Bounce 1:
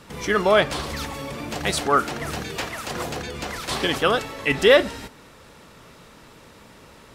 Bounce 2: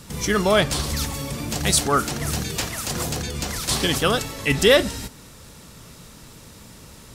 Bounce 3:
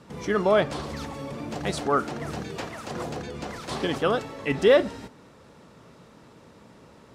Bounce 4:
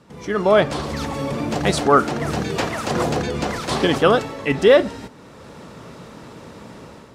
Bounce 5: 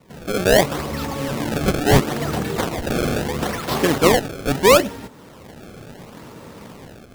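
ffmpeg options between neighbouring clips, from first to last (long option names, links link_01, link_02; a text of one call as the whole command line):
ffmpeg -i in.wav -af "bass=frequency=250:gain=10,treble=frequency=4000:gain=13,volume=-2dB" out.wav
ffmpeg -i in.wav -af "bandpass=frequency=550:width_type=q:width=0.55:csg=0,volume=-1dB" out.wav
ffmpeg -i in.wav -af "dynaudnorm=framelen=170:gausssize=5:maxgain=13dB,volume=-1dB" out.wav
ffmpeg -i in.wav -af "acrusher=samples=26:mix=1:aa=0.000001:lfo=1:lforange=41.6:lforate=0.74" out.wav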